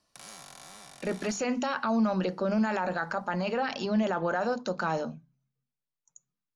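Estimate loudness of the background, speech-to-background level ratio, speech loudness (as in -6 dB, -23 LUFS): -48.0 LUFS, 18.0 dB, -30.0 LUFS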